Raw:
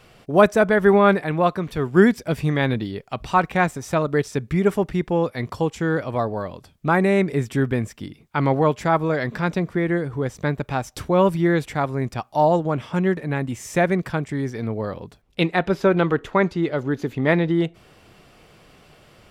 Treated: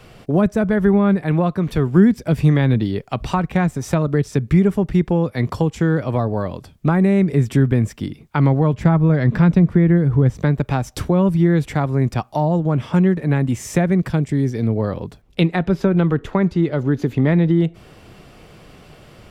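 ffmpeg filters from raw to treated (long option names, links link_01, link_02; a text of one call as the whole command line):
ffmpeg -i in.wav -filter_complex "[0:a]asettb=1/sr,asplit=3[link_01][link_02][link_03];[link_01]atrim=end=8.734[link_04];[link_02]atrim=start=8.73:end=10.38,asetpts=PTS-STARTPTS,afade=type=in:duration=0.004:curve=qsin,afade=type=out:start_time=1.646:duration=0.004:curve=qsin,bass=frequency=250:gain=6,treble=frequency=4000:gain=-6[link_05];[link_03]atrim=start=10.376[link_06];[link_04][link_05]acrossfade=duration=0.004:curve1=hsin:curve2=qsin[link_07];[link_07][link_06]acrossfade=duration=0.004:curve1=qsin:curve2=hsin,asettb=1/sr,asplit=3[link_08][link_09][link_10];[link_08]atrim=end=14.084[link_11];[link_09]atrim=start=14.08:end=14.76,asetpts=PTS-STARTPTS,afade=type=in:duration=0.004:curve=qsin,afade=type=out:start_time=0.676:duration=0.004:curve=qsin,equalizer=frequency=1200:width_type=o:width=1.9:gain=-7.5[link_12];[link_10]atrim=start=14.756[link_13];[link_11][link_12]acrossfade=duration=0.004:curve1=hsin:curve2=qsin[link_14];[link_14][link_13]acrossfade=duration=0.004:curve1=qsin:curve2=hsin,lowshelf=frequency=440:gain=5.5,acrossover=split=220[link_15][link_16];[link_16]acompressor=threshold=-23dB:ratio=6[link_17];[link_15][link_17]amix=inputs=2:normalize=0,volume=4dB" out.wav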